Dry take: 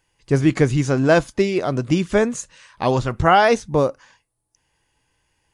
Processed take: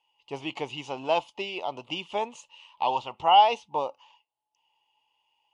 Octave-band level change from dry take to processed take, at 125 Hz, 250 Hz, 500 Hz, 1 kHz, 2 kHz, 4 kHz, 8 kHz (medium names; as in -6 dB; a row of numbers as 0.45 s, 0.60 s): -27.5 dB, -21.0 dB, -12.5 dB, -2.0 dB, -13.0 dB, +0.5 dB, under -15 dB